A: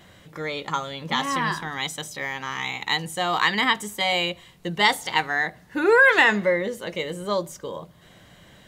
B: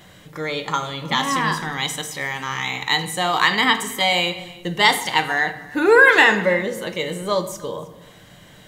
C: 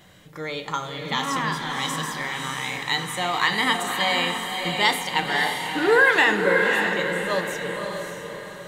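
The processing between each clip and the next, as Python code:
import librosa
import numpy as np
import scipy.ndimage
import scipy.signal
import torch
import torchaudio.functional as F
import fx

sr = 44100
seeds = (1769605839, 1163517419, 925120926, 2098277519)

y1 = fx.high_shelf(x, sr, hz=6200.0, db=4.5)
y1 = y1 + 10.0 ** (-21.5 / 20.0) * np.pad(y1, (int(313 * sr / 1000.0), 0))[:len(y1)]
y1 = fx.room_shoebox(y1, sr, seeds[0], volume_m3=320.0, walls='mixed', distance_m=0.44)
y1 = y1 * librosa.db_to_amplitude(3.0)
y2 = fx.echo_diffused(y1, sr, ms=572, feedback_pct=43, wet_db=-4.0)
y2 = y2 * librosa.db_to_amplitude(-5.0)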